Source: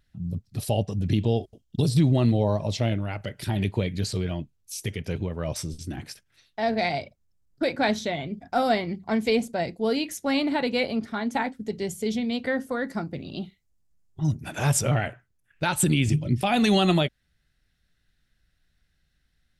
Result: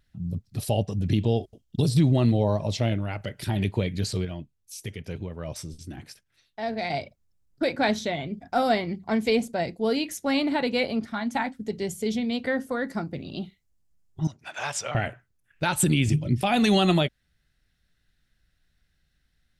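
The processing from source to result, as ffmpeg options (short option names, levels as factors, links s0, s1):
-filter_complex "[0:a]asettb=1/sr,asplit=3[s0][s1][s2];[s0]atrim=end=11.054[s3];[s1]atrim=start=11.05:end=11.59,asetpts=PTS-STARTPTS,afade=t=in:d=0.004:c=qsin,afade=t=out:st=0.536:d=0.004:c=qsin,equalizer=f=430:t=o:w=0.34:g=-13.5[s4];[s2]atrim=start=11.586[s5];[s3][s4]acrossfade=d=0.004:c1=hsin:c2=qsin[s6];[s6][s5]acrossfade=d=0.004:c1=qsin:c2=hsin,asettb=1/sr,asplit=3[s7][s8][s9];[s7]atrim=end=14.274[s10];[s8]atrim=start=14.27:end=14.95,asetpts=PTS-STARTPTS,afade=t=in:d=0.004:c=qsin,afade=t=out:st=0.676:d=0.004:c=qsin,acrossover=split=590 7000:gain=0.0794 1 0.0794[s11][s12][s13];[s11][s12][s13]amix=inputs=3:normalize=0[s14];[s9]atrim=start=14.946[s15];[s10][s14]acrossfade=d=0.004:c1=hsin:c2=qsin[s16];[s16][s15]acrossfade=d=0.004:c1=qsin:c2=hsin,asplit=3[s17][s18][s19];[s17]atrim=end=4.252[s20];[s18]atrim=start=4.248:end=6.902,asetpts=PTS-STARTPTS,volume=0.562[s21];[s19]atrim=start=6.898[s22];[s20][s21]acrossfade=d=0.004:c1=hsin:c2=hsin[s23];[s23][s22]acrossfade=d=0.004:c1=hsin:c2=hsin"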